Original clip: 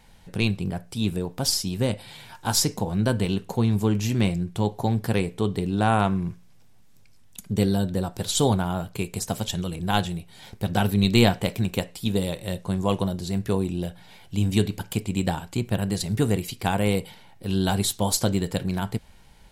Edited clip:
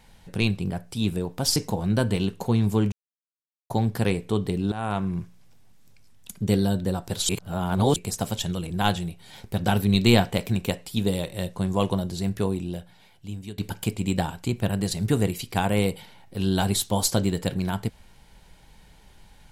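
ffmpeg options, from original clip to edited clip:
ffmpeg -i in.wav -filter_complex "[0:a]asplit=8[link_01][link_02][link_03][link_04][link_05][link_06][link_07][link_08];[link_01]atrim=end=1.562[link_09];[link_02]atrim=start=2.648:end=4.01,asetpts=PTS-STARTPTS,afade=type=out:start_time=1.358:duration=0.004:curve=hsin[link_10];[link_03]atrim=start=4.01:end=4.79,asetpts=PTS-STARTPTS,volume=0[link_11];[link_04]atrim=start=4.79:end=5.81,asetpts=PTS-STARTPTS,afade=type=in:duration=0.004:curve=hsin,afade=type=out:start_time=1.016:duration=0.004:curve=hsin:silence=0.158489[link_12];[link_05]atrim=start=5.81:end=8.382,asetpts=PTS-STARTPTS,afade=type=in:duration=0.48:silence=0.158489[link_13];[link_06]atrim=start=8.378:end=9.052,asetpts=PTS-STARTPTS,areverse[link_14];[link_07]atrim=start=9.048:end=14.67,asetpts=PTS-STARTPTS,afade=type=out:start_time=4.292:duration=1.33:silence=0.0891251[link_15];[link_08]atrim=start=14.67,asetpts=PTS-STARTPTS,afade=type=in:duration=0.004:curve=hsin:silence=0.0891251[link_16];[link_10][link_11][link_12][link_13]concat=n=4:v=0:a=1[link_17];[link_09][link_17]acrossfade=duration=0.004:curve1=hsin:curve2=hsin[link_18];[link_18][link_14]acrossfade=duration=0.004:curve1=hsin:curve2=hsin[link_19];[link_15][link_16]concat=n=2:v=0:a=1[link_20];[link_19][link_20]acrossfade=duration=0.004:curve1=hsin:curve2=hsin" out.wav

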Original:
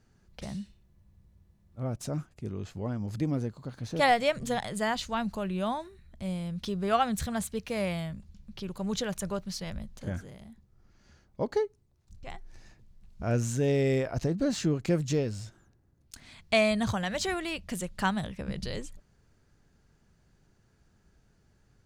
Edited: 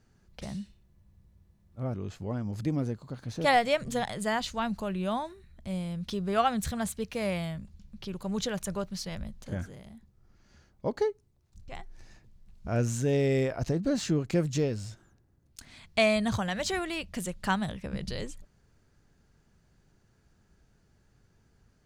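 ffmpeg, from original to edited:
ffmpeg -i in.wav -filter_complex "[0:a]asplit=2[link_01][link_02];[link_01]atrim=end=1.942[link_03];[link_02]atrim=start=2.488[link_04];[link_03][link_04]acrossfade=duration=0.004:curve1=hsin:curve2=hsin" out.wav

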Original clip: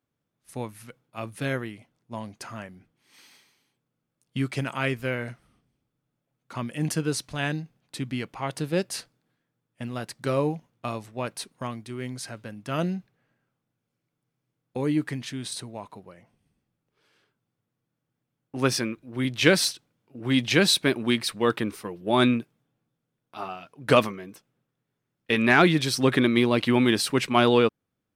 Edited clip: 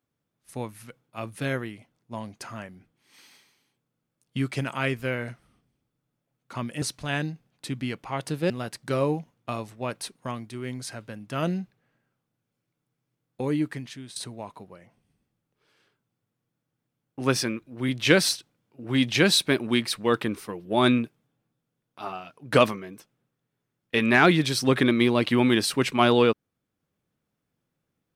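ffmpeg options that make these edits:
ffmpeg -i in.wav -filter_complex "[0:a]asplit=4[link_01][link_02][link_03][link_04];[link_01]atrim=end=6.822[link_05];[link_02]atrim=start=7.118:end=8.802[link_06];[link_03]atrim=start=9.858:end=15.52,asetpts=PTS-STARTPTS,afade=type=out:start_time=4.962:duration=0.7:silence=0.298538[link_07];[link_04]atrim=start=15.52,asetpts=PTS-STARTPTS,afade=type=in:duration=0.004:curve=hsin:silence=0.298538[link_08];[link_05][link_06]acrossfade=duration=0.004:curve1=hsin:curve2=hsin[link_09];[link_07][link_08]concat=n=2:v=0:a=1[link_10];[link_09][link_10]acrossfade=duration=0.004:curve1=hsin:curve2=hsin" out.wav

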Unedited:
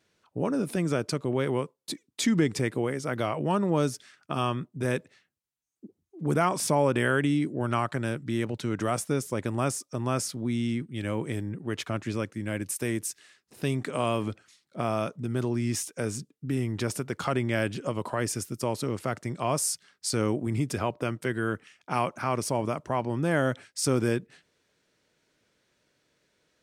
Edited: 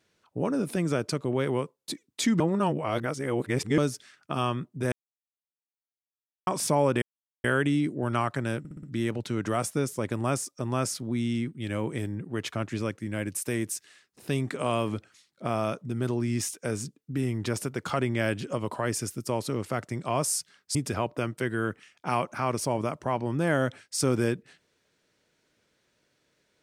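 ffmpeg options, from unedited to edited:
ffmpeg -i in.wav -filter_complex "[0:a]asplit=11[link_01][link_02][link_03][link_04][link_05][link_06][link_07][link_08][link_09][link_10][link_11];[link_01]atrim=end=2.402[link_12];[link_02]atrim=start=2.398:end=3.782,asetpts=PTS-STARTPTS,areverse[link_13];[link_03]atrim=start=3.778:end=4.92,asetpts=PTS-STARTPTS,afade=type=out:start_time=1.138:duration=0.004:curve=hsin[link_14];[link_04]atrim=start=4.92:end=6.47,asetpts=PTS-STARTPTS,volume=0[link_15];[link_05]atrim=start=6.47:end=7.02,asetpts=PTS-STARTPTS,afade=type=in:duration=0.004:curve=hsin,afade=type=out:start_time=0.546:duration=0.004:curve=hsin,apad=pad_dur=0.42[link_16];[link_06]atrim=start=7.02:end=8.232,asetpts=PTS-STARTPTS,afade=type=in:duration=0.004:curve=hsin[link_17];[link_07]atrim=start=8.168:end=8.232[link_18];[link_08]atrim=start=8.168:end=8.232[link_19];[link_09]atrim=start=8.168:end=8.232[link_20];[link_10]atrim=start=8.168:end=20.092[link_21];[link_11]atrim=start=20.588[link_22];[link_12][link_13]acrossfade=duration=0.004:curve1=hsin:curve2=hsin[link_23];[link_14][link_15][link_16][link_17]concat=n=4:v=0:a=1[link_24];[link_23][link_24]acrossfade=duration=0.004:curve1=hsin:curve2=hsin[link_25];[link_25][link_18]acrossfade=duration=0.004:curve1=hsin:curve2=hsin[link_26];[link_26][link_19]acrossfade=duration=0.004:curve1=hsin:curve2=hsin[link_27];[link_27][link_20]acrossfade=duration=0.004:curve1=hsin:curve2=hsin[link_28];[link_28][link_21]acrossfade=duration=0.004:curve1=hsin:curve2=hsin[link_29];[link_29][link_22]acrossfade=duration=0.004:curve1=hsin:curve2=hsin" out.wav

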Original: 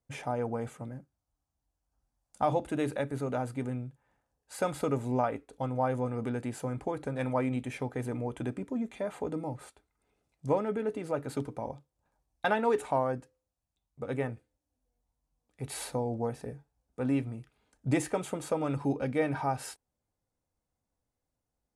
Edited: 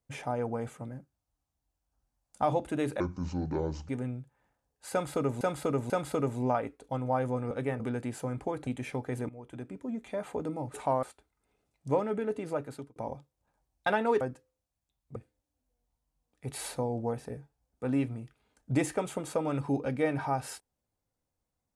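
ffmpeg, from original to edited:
ffmpeg -i in.wav -filter_complex "[0:a]asplit=14[link_01][link_02][link_03][link_04][link_05][link_06][link_07][link_08][link_09][link_10][link_11][link_12][link_13][link_14];[link_01]atrim=end=3.004[link_15];[link_02]atrim=start=3:end=3.56,asetpts=PTS-STARTPTS,asetrate=27783,aresample=44100[link_16];[link_03]atrim=start=3.556:end=5.082[link_17];[link_04]atrim=start=4.588:end=5.082[link_18];[link_05]atrim=start=4.588:end=6.202[link_19];[link_06]atrim=start=14.028:end=14.322[link_20];[link_07]atrim=start=6.198:end=7.072[link_21];[link_08]atrim=start=7.538:end=8.16,asetpts=PTS-STARTPTS,afade=type=out:start_time=0.618:duration=0.004:curve=hsin:silence=0.158489[link_22];[link_09]atrim=start=8.16:end=9.612,asetpts=PTS-STARTPTS,afade=type=in:duration=0.94:silence=0.158489[link_23];[link_10]atrim=start=12.788:end=13.082[link_24];[link_11]atrim=start=9.608:end=11.54,asetpts=PTS-STARTPTS,afade=type=out:start_time=1.492:duration=0.44[link_25];[link_12]atrim=start=11.54:end=12.792,asetpts=PTS-STARTPTS,afade=type=in:duration=0.004:curve=hsin[link_26];[link_13]atrim=start=13.078:end=14.032[link_27];[link_14]atrim=start=14.318[link_28];[link_15][link_16]acrossfade=duration=0.004:curve1=hsin:curve2=hsin[link_29];[link_29][link_17]acrossfade=duration=0.004:curve1=hsin:curve2=hsin[link_30];[link_30][link_18]acrossfade=duration=0.004:curve1=hsin:curve2=hsin[link_31];[link_31][link_19]acrossfade=duration=0.004:curve1=hsin:curve2=hsin[link_32];[link_32][link_20]acrossfade=duration=0.004:curve1=hsin:curve2=hsin[link_33];[link_33][link_21]acrossfade=duration=0.004:curve1=hsin:curve2=hsin[link_34];[link_22][link_23]concat=n=2:v=0:a=1[link_35];[link_34][link_35]acrossfade=duration=0.004:curve1=hsin:curve2=hsin[link_36];[link_36][link_24]acrossfade=duration=0.004:curve1=hsin:curve2=hsin[link_37];[link_25][link_26]concat=n=2:v=0:a=1[link_38];[link_37][link_38]acrossfade=duration=0.004:curve1=hsin:curve2=hsin[link_39];[link_39][link_27]acrossfade=duration=0.004:curve1=hsin:curve2=hsin[link_40];[link_40][link_28]acrossfade=duration=0.004:curve1=hsin:curve2=hsin" out.wav

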